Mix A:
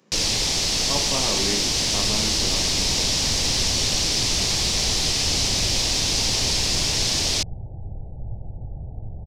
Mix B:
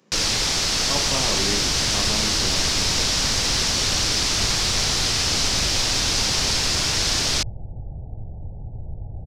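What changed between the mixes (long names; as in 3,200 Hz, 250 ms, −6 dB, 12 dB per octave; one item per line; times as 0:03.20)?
first sound: add parametric band 1,400 Hz +9.5 dB 0.81 octaves
second sound: entry −0.85 s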